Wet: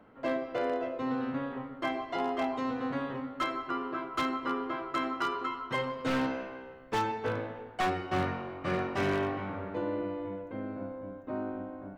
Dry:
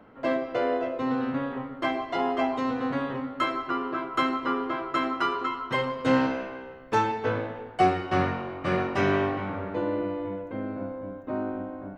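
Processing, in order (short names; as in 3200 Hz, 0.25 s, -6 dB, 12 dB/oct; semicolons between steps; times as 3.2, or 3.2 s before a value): wavefolder -17.5 dBFS; gain -5 dB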